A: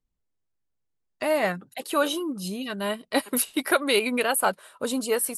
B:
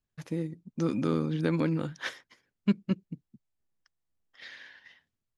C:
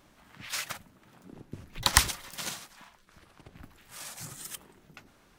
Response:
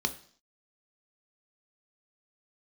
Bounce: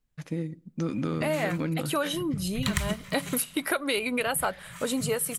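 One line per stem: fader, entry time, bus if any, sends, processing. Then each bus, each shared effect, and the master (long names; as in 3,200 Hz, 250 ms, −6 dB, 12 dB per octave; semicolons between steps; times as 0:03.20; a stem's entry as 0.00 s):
+2.5 dB, 0.00 s, send −23 dB, no processing
+2.0 dB, 0.00 s, send −20.5 dB, no processing
−2.5 dB, 0.80 s, send −6 dB, low shelf with overshoot 220 Hz +7 dB, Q 3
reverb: on, RT60 0.50 s, pre-delay 3 ms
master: downward compressor 4 to 1, threshold −25 dBFS, peak gain reduction 11.5 dB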